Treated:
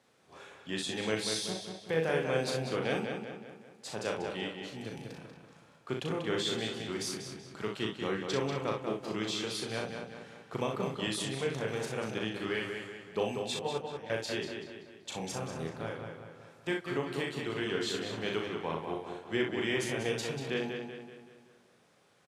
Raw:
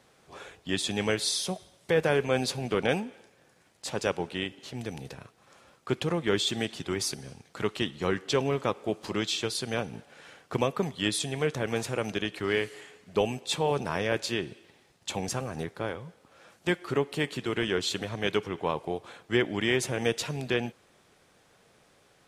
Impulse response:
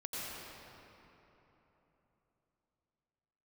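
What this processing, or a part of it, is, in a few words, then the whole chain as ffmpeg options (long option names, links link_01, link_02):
slapback doubling: -filter_complex "[0:a]asplit=3[link_01][link_02][link_03];[link_02]adelay=37,volume=-4dB[link_04];[link_03]adelay=62,volume=-7dB[link_05];[link_01][link_04][link_05]amix=inputs=3:normalize=0,asettb=1/sr,asplit=3[link_06][link_07][link_08];[link_06]atrim=end=13.594[link_09];[link_07]atrim=start=13.59:end=14.1,asetpts=PTS-STARTPTS,afade=type=in:duration=0.004:curve=qsin,afade=type=out:start_time=0.506:duration=0.004:curve=qsin,agate=range=-17dB:threshold=-23dB:ratio=16:detection=peak[link_10];[link_08]atrim=start=14.096[link_11];[link_09][link_10]acrossfade=duration=0.004:curve1=hsin:curve2=qsin[link_12];[link_12][link_11]acrossfade=duration=0.004:curve1=qsin:curve2=hsin,highpass=100,highshelf=frequency=12000:gain=-4.5,asplit=2[link_13][link_14];[link_14]adelay=190,lowpass=frequency=4800:poles=1,volume=-5.5dB,asplit=2[link_15][link_16];[link_16]adelay=190,lowpass=frequency=4800:poles=1,volume=0.5,asplit=2[link_17][link_18];[link_18]adelay=190,lowpass=frequency=4800:poles=1,volume=0.5,asplit=2[link_19][link_20];[link_20]adelay=190,lowpass=frequency=4800:poles=1,volume=0.5,asplit=2[link_21][link_22];[link_22]adelay=190,lowpass=frequency=4800:poles=1,volume=0.5,asplit=2[link_23][link_24];[link_24]adelay=190,lowpass=frequency=4800:poles=1,volume=0.5[link_25];[link_13][link_15][link_17][link_19][link_21][link_23][link_25]amix=inputs=7:normalize=0,volume=-7.5dB"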